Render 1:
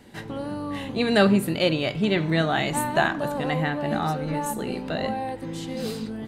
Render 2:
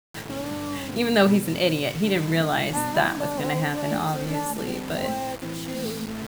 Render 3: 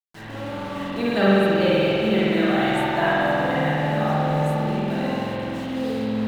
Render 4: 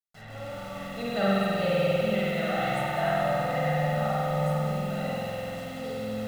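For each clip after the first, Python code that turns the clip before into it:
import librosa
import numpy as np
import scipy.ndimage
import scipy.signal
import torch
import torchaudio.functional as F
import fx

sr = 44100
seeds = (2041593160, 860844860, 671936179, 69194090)

y1 = fx.quant_dither(x, sr, seeds[0], bits=6, dither='none')
y2 = fx.high_shelf(y1, sr, hz=6600.0, db=-11.5)
y2 = fx.rev_spring(y2, sr, rt60_s=3.2, pass_ms=(46,), chirp_ms=25, drr_db=-9.0)
y2 = y2 * 10.0 ** (-6.0 / 20.0)
y3 = y2 + 0.81 * np.pad(y2, (int(1.5 * sr / 1000.0), 0))[:len(y2)]
y3 = fx.echo_crushed(y3, sr, ms=98, feedback_pct=80, bits=6, wet_db=-8)
y3 = y3 * 10.0 ** (-9.0 / 20.0)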